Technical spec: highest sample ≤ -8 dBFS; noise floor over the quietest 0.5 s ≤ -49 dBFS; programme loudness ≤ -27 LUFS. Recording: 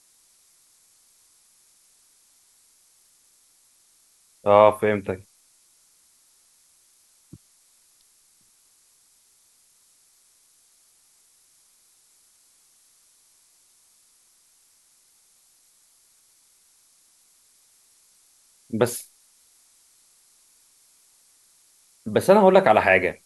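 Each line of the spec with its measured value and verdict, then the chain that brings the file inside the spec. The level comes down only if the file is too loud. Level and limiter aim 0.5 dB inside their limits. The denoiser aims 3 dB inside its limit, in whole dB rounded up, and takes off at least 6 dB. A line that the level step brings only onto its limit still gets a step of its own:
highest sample -2.0 dBFS: fail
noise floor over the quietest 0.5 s -61 dBFS: pass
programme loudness -19.5 LUFS: fail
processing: trim -8 dB

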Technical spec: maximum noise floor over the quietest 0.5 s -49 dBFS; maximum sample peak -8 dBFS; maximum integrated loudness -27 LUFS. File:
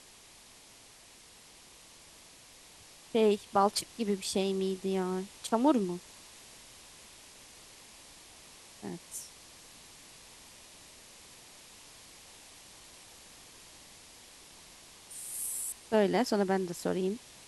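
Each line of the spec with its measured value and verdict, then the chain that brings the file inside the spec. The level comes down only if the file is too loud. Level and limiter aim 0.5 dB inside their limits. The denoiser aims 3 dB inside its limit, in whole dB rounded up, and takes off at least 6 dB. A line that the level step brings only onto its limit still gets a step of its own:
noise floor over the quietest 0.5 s -56 dBFS: pass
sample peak -13.0 dBFS: pass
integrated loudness -31.5 LUFS: pass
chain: none needed

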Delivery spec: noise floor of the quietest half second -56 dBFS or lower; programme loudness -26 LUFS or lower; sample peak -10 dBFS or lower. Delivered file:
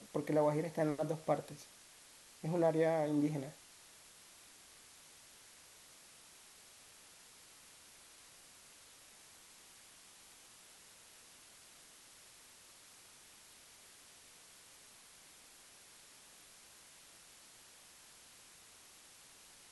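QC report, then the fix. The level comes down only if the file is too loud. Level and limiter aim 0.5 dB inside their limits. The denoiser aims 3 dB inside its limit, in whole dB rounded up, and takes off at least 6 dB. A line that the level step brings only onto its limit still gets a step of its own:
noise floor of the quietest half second -60 dBFS: pass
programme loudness -36.0 LUFS: pass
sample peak -20.5 dBFS: pass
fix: none needed

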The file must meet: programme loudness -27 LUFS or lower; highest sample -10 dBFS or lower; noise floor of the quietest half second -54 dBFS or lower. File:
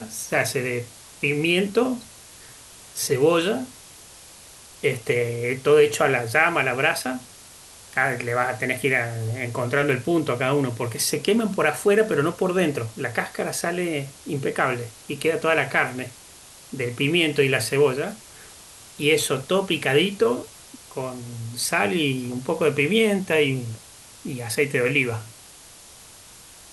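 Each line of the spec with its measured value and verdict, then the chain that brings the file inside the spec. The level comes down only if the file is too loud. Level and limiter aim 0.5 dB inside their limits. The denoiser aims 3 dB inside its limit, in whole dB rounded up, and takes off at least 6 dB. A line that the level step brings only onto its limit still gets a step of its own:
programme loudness -22.5 LUFS: fail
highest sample -4.0 dBFS: fail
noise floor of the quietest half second -46 dBFS: fail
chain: noise reduction 6 dB, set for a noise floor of -46 dBFS; trim -5 dB; peak limiter -10.5 dBFS

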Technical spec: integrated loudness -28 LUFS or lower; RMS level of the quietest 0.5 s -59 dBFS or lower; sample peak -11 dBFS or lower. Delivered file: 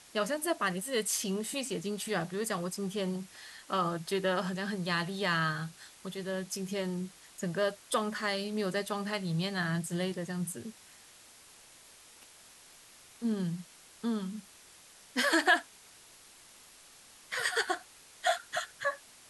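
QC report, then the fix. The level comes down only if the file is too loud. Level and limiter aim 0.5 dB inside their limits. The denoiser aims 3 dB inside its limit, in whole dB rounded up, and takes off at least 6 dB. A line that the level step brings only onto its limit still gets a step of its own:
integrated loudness -33.0 LUFS: pass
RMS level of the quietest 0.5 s -56 dBFS: fail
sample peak -12.5 dBFS: pass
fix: noise reduction 6 dB, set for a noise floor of -56 dBFS

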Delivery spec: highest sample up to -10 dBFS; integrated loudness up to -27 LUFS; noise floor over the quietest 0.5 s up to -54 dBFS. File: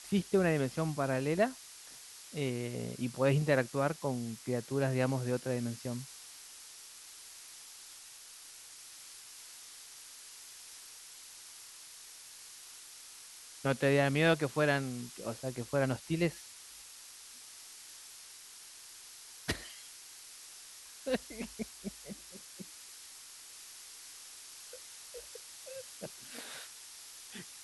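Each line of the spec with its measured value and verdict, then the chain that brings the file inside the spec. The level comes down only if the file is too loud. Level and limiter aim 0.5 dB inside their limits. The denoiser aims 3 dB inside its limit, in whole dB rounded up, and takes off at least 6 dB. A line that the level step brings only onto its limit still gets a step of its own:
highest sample -16.0 dBFS: pass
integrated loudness -34.5 LUFS: pass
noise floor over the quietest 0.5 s -52 dBFS: fail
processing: noise reduction 6 dB, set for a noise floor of -52 dBFS

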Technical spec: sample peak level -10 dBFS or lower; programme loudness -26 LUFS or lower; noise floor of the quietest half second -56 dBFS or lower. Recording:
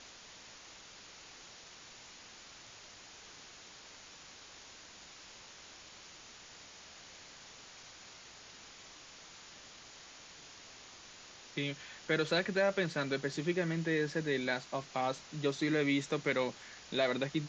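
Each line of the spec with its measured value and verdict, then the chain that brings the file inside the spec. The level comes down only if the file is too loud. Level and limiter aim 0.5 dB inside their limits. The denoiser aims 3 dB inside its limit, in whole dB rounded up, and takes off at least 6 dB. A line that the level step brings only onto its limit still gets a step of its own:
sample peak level -18.5 dBFS: pass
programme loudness -34.0 LUFS: pass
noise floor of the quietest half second -54 dBFS: fail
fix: noise reduction 6 dB, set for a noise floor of -54 dBFS

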